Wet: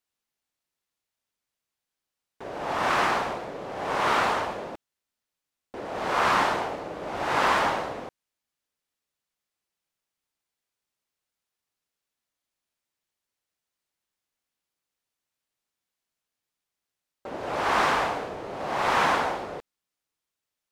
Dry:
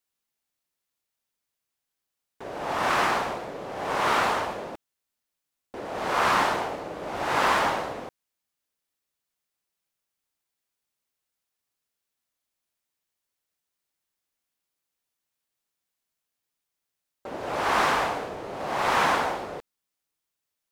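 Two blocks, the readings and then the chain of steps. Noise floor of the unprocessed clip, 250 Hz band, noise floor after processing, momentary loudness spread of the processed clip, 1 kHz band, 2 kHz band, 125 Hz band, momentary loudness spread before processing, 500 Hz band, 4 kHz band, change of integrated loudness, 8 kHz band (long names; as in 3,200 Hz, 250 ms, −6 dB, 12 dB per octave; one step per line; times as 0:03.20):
−85 dBFS, 0.0 dB, below −85 dBFS, 17 LU, 0.0 dB, 0.0 dB, 0.0 dB, 17 LU, 0.0 dB, −0.5 dB, 0.0 dB, −2.0 dB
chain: high-shelf EQ 10,000 Hz −7.5 dB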